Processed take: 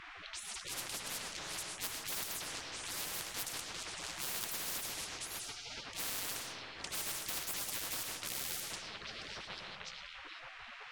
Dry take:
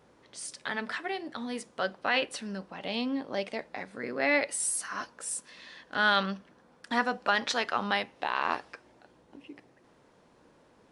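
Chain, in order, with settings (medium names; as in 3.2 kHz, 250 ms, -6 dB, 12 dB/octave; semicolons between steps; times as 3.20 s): companding laws mixed up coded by mu; on a send: repeats whose band climbs or falls 791 ms, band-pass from 970 Hz, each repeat 1.4 oct, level -11 dB; on the sum: level-controlled noise filter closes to 690 Hz, open at -25.5 dBFS; spectral gate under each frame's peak -25 dB weak; algorithmic reverb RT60 0.73 s, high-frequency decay 0.4×, pre-delay 70 ms, DRR 14.5 dB; spectrum-flattening compressor 10:1; trim +6.5 dB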